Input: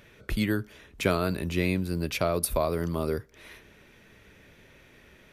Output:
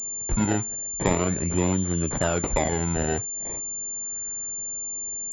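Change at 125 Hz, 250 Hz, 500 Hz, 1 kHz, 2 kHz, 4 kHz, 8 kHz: +4.0, +3.5, +1.5, +4.0, +0.5, -2.0, +16.0 dB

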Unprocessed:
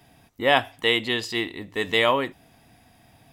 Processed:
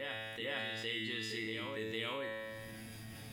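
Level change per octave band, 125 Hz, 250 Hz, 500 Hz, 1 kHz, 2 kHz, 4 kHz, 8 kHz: -9.0, -13.5, -16.5, -21.5, -14.5, -14.0, -10.0 dB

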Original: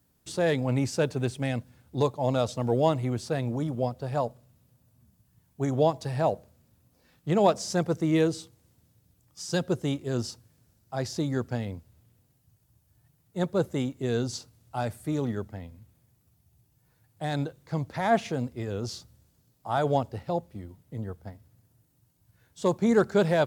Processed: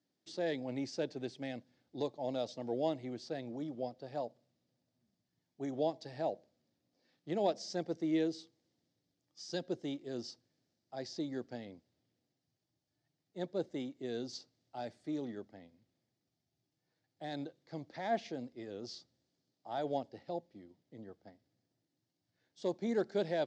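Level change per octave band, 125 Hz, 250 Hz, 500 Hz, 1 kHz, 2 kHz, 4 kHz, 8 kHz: -20.0, -10.5, -10.5, -12.0, -13.0, -8.5, -14.5 dB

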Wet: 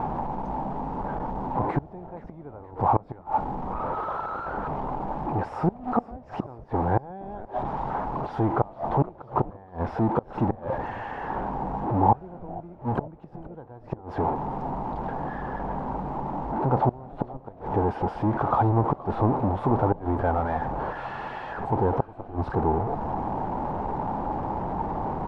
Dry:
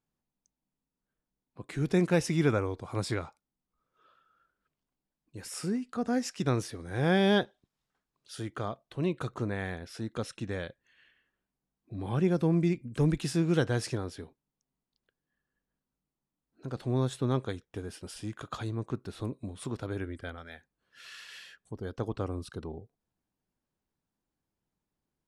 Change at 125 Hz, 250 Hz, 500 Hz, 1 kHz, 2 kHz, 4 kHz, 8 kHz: +4.0 dB, +3.0 dB, +5.0 dB, +17.0 dB, -0.5 dB, under -10 dB, under -20 dB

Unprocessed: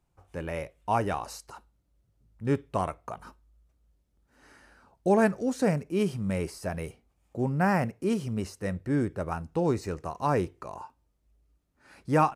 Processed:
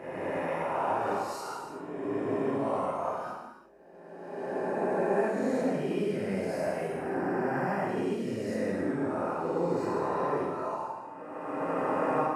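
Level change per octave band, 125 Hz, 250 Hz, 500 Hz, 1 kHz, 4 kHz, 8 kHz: -8.0, -2.0, +1.5, 0.0, -2.5, -5.5 dB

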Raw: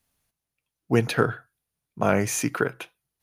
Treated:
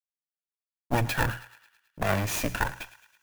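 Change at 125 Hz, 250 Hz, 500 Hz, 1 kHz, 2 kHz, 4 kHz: -2.0, -7.5, -8.0, -1.5, -1.0, +0.5 dB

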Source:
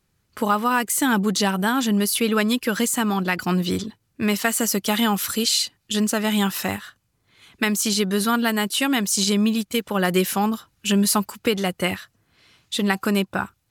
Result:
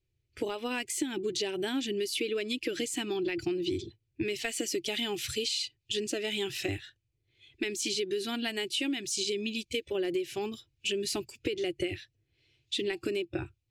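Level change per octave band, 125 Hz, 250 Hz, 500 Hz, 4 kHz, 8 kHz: -17.0, -14.0, -6.5, -8.0, -12.5 dB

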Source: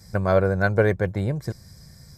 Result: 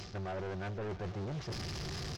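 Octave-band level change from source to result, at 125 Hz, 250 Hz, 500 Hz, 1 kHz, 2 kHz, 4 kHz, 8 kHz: -14.5 dB, -15.0 dB, -19.0 dB, -14.0 dB, -18.5 dB, +1.0 dB, n/a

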